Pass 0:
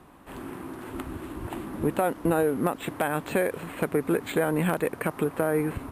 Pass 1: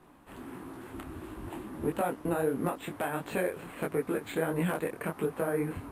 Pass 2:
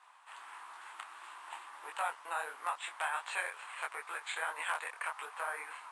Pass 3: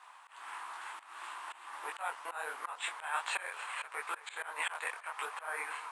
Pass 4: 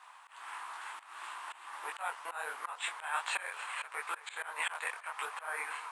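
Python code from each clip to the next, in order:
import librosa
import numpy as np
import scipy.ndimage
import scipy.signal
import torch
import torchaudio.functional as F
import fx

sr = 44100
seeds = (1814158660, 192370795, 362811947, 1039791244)

y1 = fx.detune_double(x, sr, cents=52)
y1 = y1 * librosa.db_to_amplitude(-2.0)
y2 = scipy.signal.sosfilt(scipy.signal.ellip(3, 1.0, 60, [930.0, 8700.0], 'bandpass', fs=sr, output='sos'), y1)
y2 = y2 * librosa.db_to_amplitude(3.0)
y3 = fx.auto_swell(y2, sr, attack_ms=211.0)
y3 = fx.echo_filtered(y3, sr, ms=244, feedback_pct=78, hz=4100.0, wet_db=-21.0)
y3 = y3 * librosa.db_to_amplitude(5.5)
y4 = fx.low_shelf(y3, sr, hz=370.0, db=-6.5)
y4 = y4 * librosa.db_to_amplitude(1.0)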